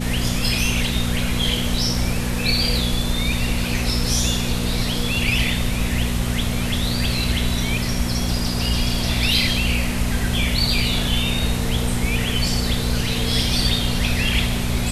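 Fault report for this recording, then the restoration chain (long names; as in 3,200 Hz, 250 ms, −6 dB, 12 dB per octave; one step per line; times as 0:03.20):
mains hum 60 Hz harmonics 4 −25 dBFS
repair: hum removal 60 Hz, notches 4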